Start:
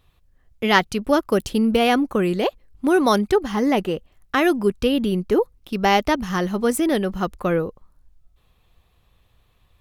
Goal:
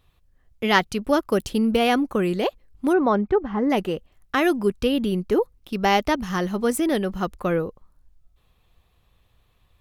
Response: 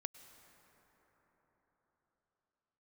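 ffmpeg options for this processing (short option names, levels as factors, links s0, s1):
-filter_complex "[0:a]asplit=3[s0][s1][s2];[s0]afade=t=out:st=2.92:d=0.02[s3];[s1]lowpass=1500,afade=t=in:st=2.92:d=0.02,afade=t=out:st=3.69:d=0.02[s4];[s2]afade=t=in:st=3.69:d=0.02[s5];[s3][s4][s5]amix=inputs=3:normalize=0,volume=0.794"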